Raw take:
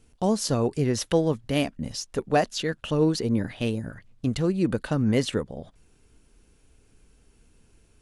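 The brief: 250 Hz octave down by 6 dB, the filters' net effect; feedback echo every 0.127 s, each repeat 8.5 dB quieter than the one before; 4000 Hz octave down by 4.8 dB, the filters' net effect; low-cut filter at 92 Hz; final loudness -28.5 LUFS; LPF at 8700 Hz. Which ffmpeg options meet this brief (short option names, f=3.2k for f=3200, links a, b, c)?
-af "highpass=92,lowpass=8.7k,equalizer=f=250:t=o:g=-8,equalizer=f=4k:t=o:g=-6.5,aecho=1:1:127|254|381|508:0.376|0.143|0.0543|0.0206,volume=0.5dB"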